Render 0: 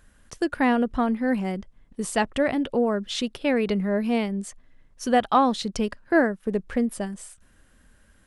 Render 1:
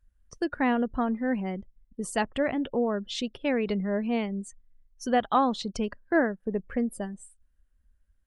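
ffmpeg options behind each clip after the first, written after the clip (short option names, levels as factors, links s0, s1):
-af "afftdn=nr=22:nf=-42,volume=0.631"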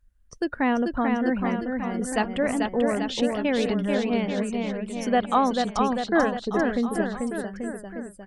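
-af "aecho=1:1:440|836|1192|1513|1802:0.631|0.398|0.251|0.158|0.1,volume=1.26"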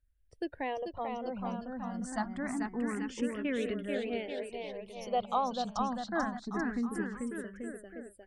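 -filter_complex "[0:a]asplit=2[s0][s1];[s1]afreqshift=0.25[s2];[s0][s2]amix=inputs=2:normalize=1,volume=0.422"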